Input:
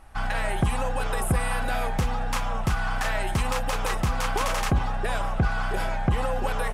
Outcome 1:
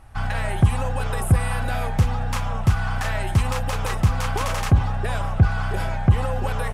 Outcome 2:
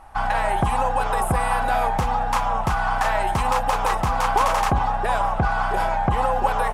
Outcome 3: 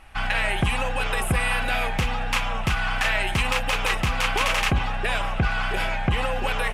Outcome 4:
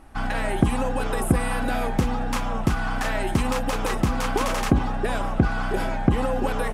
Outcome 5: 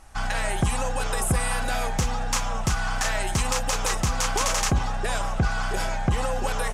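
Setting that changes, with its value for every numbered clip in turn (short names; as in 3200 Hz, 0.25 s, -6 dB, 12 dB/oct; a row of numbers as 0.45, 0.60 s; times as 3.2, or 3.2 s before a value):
bell, frequency: 100, 880, 2600, 280, 6600 Hz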